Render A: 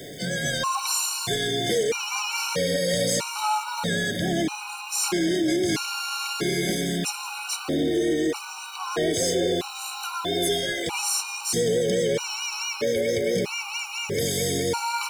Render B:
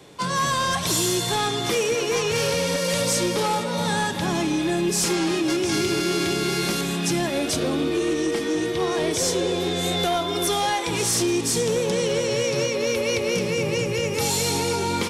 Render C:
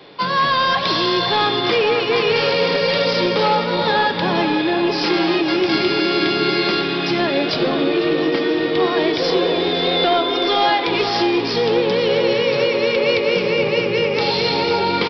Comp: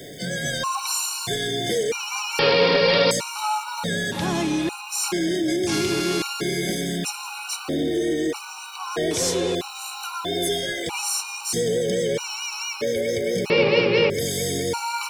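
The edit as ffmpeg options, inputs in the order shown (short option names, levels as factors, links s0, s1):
-filter_complex "[2:a]asplit=2[s0][s1];[1:a]asplit=3[s2][s3][s4];[0:a]asplit=6[s5][s6][s7][s8][s9][s10];[s5]atrim=end=2.392[s11];[s0]atrim=start=2.388:end=3.112[s12];[s6]atrim=start=3.108:end=4.122[s13];[s2]atrim=start=4.118:end=4.692[s14];[s7]atrim=start=4.688:end=5.672[s15];[s3]atrim=start=5.668:end=6.222[s16];[s8]atrim=start=6.218:end=9.112[s17];[s4]atrim=start=9.108:end=9.552[s18];[s9]atrim=start=9.548:end=13.502[s19];[s1]atrim=start=13.498:end=14.102[s20];[s10]atrim=start=14.098[s21];[s11][s12]acrossfade=d=0.004:c1=hsin:c2=hsin[s22];[s22][s13]acrossfade=d=0.004:c1=hsin:c2=hsin[s23];[s23][s14]acrossfade=d=0.004:c1=hsin:c2=hsin[s24];[s24][s15]acrossfade=d=0.004:c1=hsin:c2=hsin[s25];[s25][s16]acrossfade=d=0.004:c1=hsin:c2=hsin[s26];[s26][s17]acrossfade=d=0.004:c1=hsin:c2=hsin[s27];[s27][s18]acrossfade=d=0.004:c1=hsin:c2=hsin[s28];[s28][s19]acrossfade=d=0.004:c1=hsin:c2=hsin[s29];[s29][s20]acrossfade=d=0.004:c1=hsin:c2=hsin[s30];[s30][s21]acrossfade=d=0.004:c1=hsin:c2=hsin"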